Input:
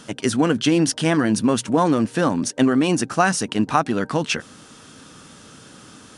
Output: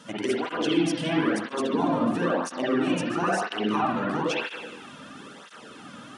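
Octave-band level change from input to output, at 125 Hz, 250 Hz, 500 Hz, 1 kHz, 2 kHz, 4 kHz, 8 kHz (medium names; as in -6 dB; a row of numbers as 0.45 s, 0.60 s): -9.5 dB, -6.5 dB, -4.5 dB, -5.0 dB, -4.5 dB, -5.5 dB, -13.5 dB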